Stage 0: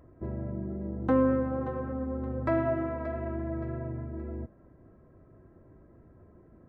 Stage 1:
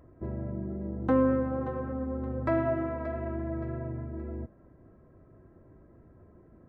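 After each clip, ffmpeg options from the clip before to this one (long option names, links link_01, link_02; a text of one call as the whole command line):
ffmpeg -i in.wav -af anull out.wav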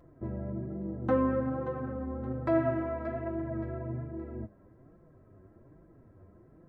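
ffmpeg -i in.wav -af "flanger=delay=5.8:depth=4.7:regen=27:speed=1.2:shape=sinusoidal,volume=2.5dB" out.wav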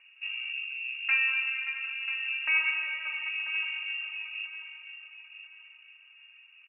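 ffmpeg -i in.wav -filter_complex "[0:a]asplit=2[link_01][link_02];[link_02]aecho=0:1:990|1980|2970:0.282|0.0817|0.0237[link_03];[link_01][link_03]amix=inputs=2:normalize=0,lowpass=frequency=2500:width_type=q:width=0.5098,lowpass=frequency=2500:width_type=q:width=0.6013,lowpass=frequency=2500:width_type=q:width=0.9,lowpass=frequency=2500:width_type=q:width=2.563,afreqshift=-2900" out.wav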